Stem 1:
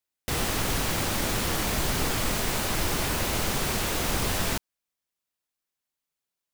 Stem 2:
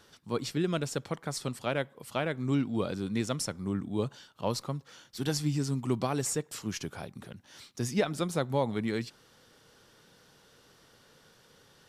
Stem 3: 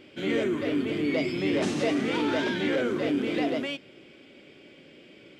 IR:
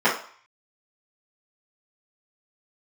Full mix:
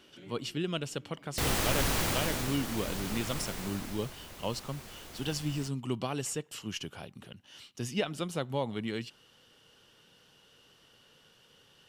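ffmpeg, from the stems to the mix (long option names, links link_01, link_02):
-filter_complex "[0:a]adelay=1100,volume=-2dB,afade=type=out:start_time=1.99:duration=0.59:silence=0.354813,afade=type=out:start_time=3.39:duration=0.75:silence=0.316228[link_01];[1:a]equalizer=frequency=2900:width_type=o:width=0.27:gain=14,volume=-4dB,asplit=2[link_02][link_03];[2:a]acrossover=split=160[link_04][link_05];[link_05]acompressor=threshold=-39dB:ratio=6[link_06];[link_04][link_06]amix=inputs=2:normalize=0,volume=-12.5dB[link_07];[link_03]apad=whole_len=237777[link_08];[link_07][link_08]sidechaincompress=threshold=-40dB:ratio=8:attack=31:release=740[link_09];[link_01][link_02][link_09]amix=inputs=3:normalize=0"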